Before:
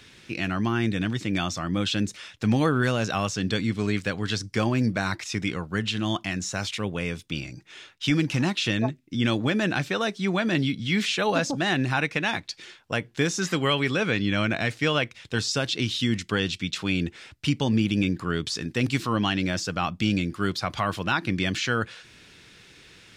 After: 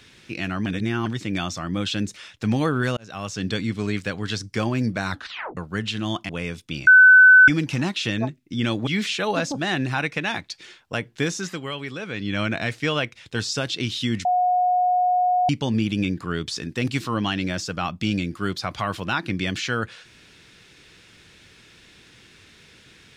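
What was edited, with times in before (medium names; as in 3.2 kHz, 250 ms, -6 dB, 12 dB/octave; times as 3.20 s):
0.66–1.06 s: reverse
2.97–3.43 s: fade in
5.10 s: tape stop 0.47 s
6.29–6.90 s: delete
7.48–8.09 s: bleep 1.51 kHz -7 dBFS
9.48–10.86 s: delete
13.28–14.39 s: dip -8 dB, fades 0.31 s
16.24–17.48 s: bleep 725 Hz -16.5 dBFS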